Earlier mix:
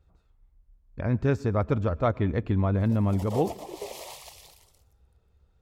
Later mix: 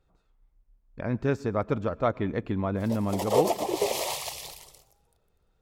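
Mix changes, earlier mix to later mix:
speech: add parametric band 73 Hz −13 dB 1.3 octaves
background +11.0 dB

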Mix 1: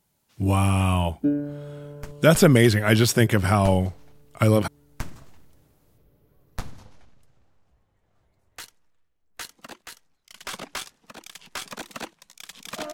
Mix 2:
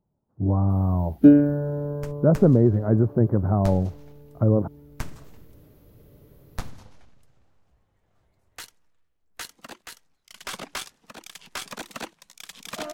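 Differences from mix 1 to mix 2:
speech: add Gaussian smoothing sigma 9.9 samples
first sound +10.5 dB

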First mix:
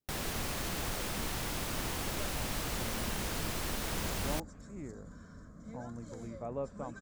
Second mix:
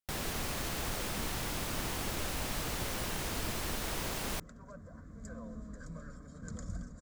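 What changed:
speech: muted
second sound: entry +2.50 s

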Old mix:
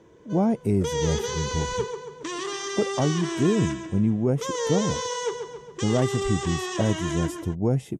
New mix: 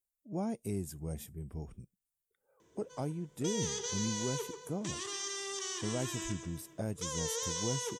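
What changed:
background: entry +2.60 s
master: add first-order pre-emphasis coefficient 0.8

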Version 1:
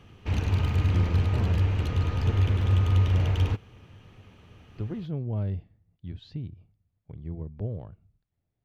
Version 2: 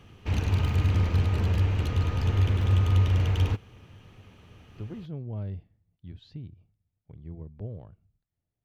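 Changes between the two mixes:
speech −5.0 dB
master: add high-shelf EQ 6,800 Hz +4.5 dB

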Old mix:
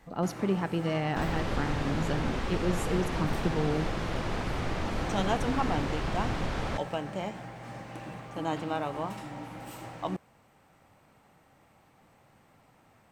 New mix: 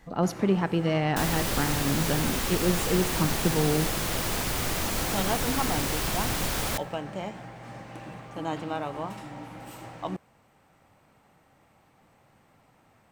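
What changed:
speech +4.5 dB
second sound: remove head-to-tape spacing loss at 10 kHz 27 dB

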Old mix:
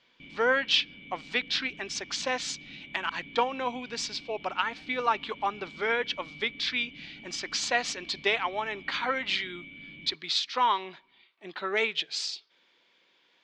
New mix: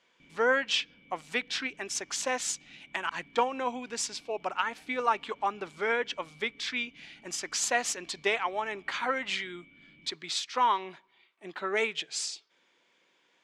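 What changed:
background −9.5 dB
master: remove low-pass with resonance 4,300 Hz, resonance Q 2

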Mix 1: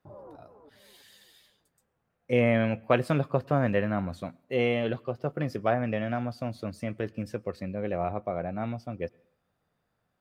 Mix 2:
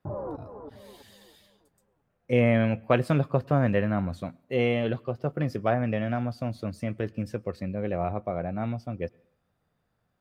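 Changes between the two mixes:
background +11.5 dB
master: add low-shelf EQ 190 Hz +5.5 dB

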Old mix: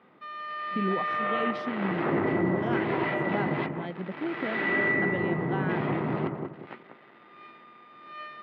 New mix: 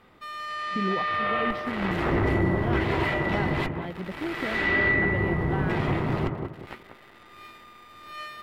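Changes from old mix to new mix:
background: remove high-frequency loss of the air 360 metres
master: remove high-pass filter 150 Hz 24 dB per octave

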